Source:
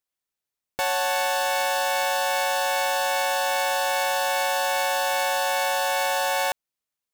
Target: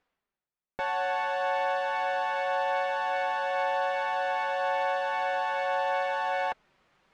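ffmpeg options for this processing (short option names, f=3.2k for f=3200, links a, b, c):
-af "lowpass=2k,areverse,acompressor=mode=upward:threshold=-38dB:ratio=2.5,areverse,flanger=delay=4:depth=1.8:regen=-33:speed=0.94:shape=triangular"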